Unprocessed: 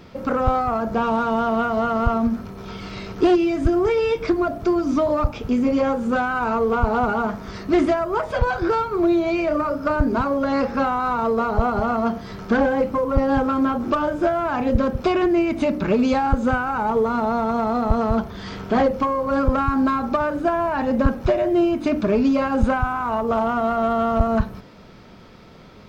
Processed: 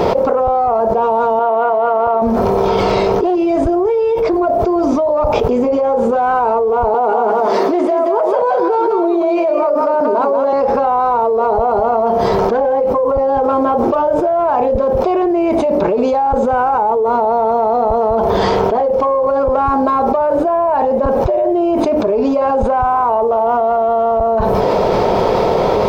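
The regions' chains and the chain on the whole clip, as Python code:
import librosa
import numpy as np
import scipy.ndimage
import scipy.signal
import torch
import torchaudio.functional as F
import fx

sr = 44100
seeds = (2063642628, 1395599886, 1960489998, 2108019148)

y = fx.chain(x, sr, fx.highpass(hz=820.0, slope=6),
    fx.quant_float(bits=2),
    fx.air_absorb(metres=410.0), at=(1.39, 2.22))
y = fx.chain(y, sr, fx.highpass(hz=210.0, slope=24),
    fx.echo_single(ms=181, db=-5.5), at=(6.94, 10.53))
y = fx.band_shelf(y, sr, hz=620.0, db=15.0, octaves=1.7)
y = fx.env_flatten(y, sr, amount_pct=100)
y = y * librosa.db_to_amplitude(-13.0)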